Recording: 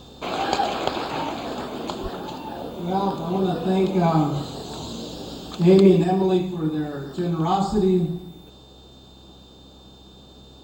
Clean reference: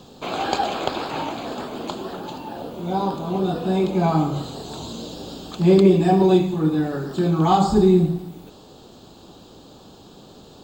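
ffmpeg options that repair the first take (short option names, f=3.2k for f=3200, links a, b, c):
-filter_complex "[0:a]bandreject=f=65.2:t=h:w=4,bandreject=f=130.4:t=h:w=4,bandreject=f=195.6:t=h:w=4,bandreject=f=260.8:t=h:w=4,bandreject=f=326:t=h:w=4,bandreject=f=3.6k:w=30,asplit=3[a][b][c];[a]afade=t=out:st=2.02:d=0.02[d];[b]highpass=f=140:w=0.5412,highpass=f=140:w=1.3066,afade=t=in:st=2.02:d=0.02,afade=t=out:st=2.14:d=0.02[e];[c]afade=t=in:st=2.14:d=0.02[f];[d][e][f]amix=inputs=3:normalize=0,asetnsamples=n=441:p=0,asendcmd='6.04 volume volume 4.5dB',volume=0dB"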